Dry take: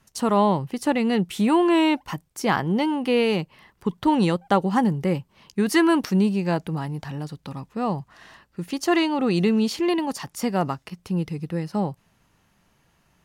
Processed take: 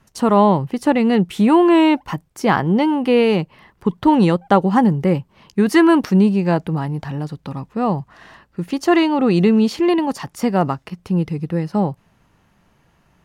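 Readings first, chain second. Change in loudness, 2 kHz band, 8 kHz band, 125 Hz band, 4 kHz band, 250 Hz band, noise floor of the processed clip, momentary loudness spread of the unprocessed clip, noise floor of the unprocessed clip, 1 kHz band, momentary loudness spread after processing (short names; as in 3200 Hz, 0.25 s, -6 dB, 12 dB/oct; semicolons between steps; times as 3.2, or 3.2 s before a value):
+6.0 dB, +4.0 dB, n/a, +6.5 dB, +1.5 dB, +6.5 dB, -60 dBFS, 13 LU, -65 dBFS, +5.5 dB, 13 LU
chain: high shelf 2900 Hz -8.5 dB; gain +6.5 dB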